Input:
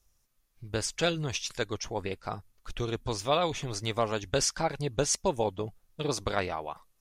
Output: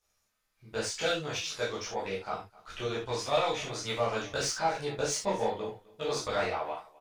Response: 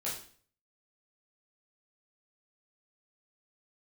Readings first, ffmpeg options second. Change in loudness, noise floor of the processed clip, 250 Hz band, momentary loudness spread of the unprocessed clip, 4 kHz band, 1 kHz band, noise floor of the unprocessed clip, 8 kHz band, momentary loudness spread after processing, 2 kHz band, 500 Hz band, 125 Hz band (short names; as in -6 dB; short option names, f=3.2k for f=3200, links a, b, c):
-1.5 dB, -77 dBFS, -5.0 dB, 11 LU, -1.0 dB, +0.5 dB, -72 dBFS, -3.5 dB, 9 LU, +1.0 dB, -0.5 dB, -7.0 dB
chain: -filter_complex "[0:a]asplit=2[a][b];[b]highpass=f=720:p=1,volume=15dB,asoftclip=type=tanh:threshold=-12.5dB[c];[a][c]amix=inputs=2:normalize=0,lowpass=f=3.8k:p=1,volume=-6dB,aecho=1:1:258:0.0794[d];[1:a]atrim=start_sample=2205,afade=t=out:st=0.15:d=0.01,atrim=end_sample=7056[e];[d][e]afir=irnorm=-1:irlink=0,volume=-7.5dB"